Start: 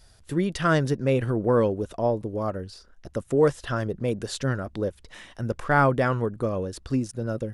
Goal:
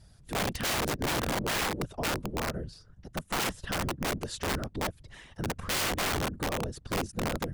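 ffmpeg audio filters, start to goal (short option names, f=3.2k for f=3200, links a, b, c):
-af "lowshelf=f=160:g=7.5,afftfilt=real='hypot(re,im)*cos(2*PI*random(0))':imag='hypot(re,im)*sin(2*PI*random(1))':win_size=512:overlap=0.75,aeval=exprs='(mod(16.8*val(0)+1,2)-1)/16.8':c=same"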